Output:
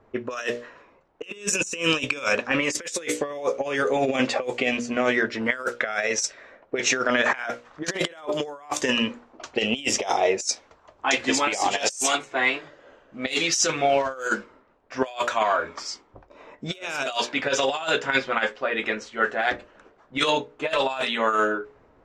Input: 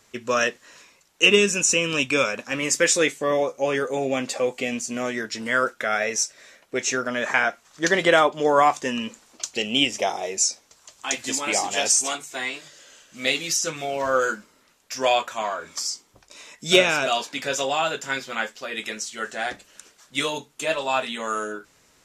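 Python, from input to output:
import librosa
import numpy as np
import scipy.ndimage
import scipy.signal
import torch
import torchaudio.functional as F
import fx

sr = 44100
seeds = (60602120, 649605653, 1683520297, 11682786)

y = fx.env_lowpass(x, sr, base_hz=730.0, full_db=-17.0)
y = fx.peak_eq(y, sr, hz=170.0, db=-6.5, octaves=0.98)
y = fx.hum_notches(y, sr, base_hz=60, count=10)
y = fx.over_compress(y, sr, threshold_db=-28.0, ratio=-0.5)
y = fx.am_noise(y, sr, seeds[0], hz=5.7, depth_pct=50)
y = y * librosa.db_to_amplitude(6.5)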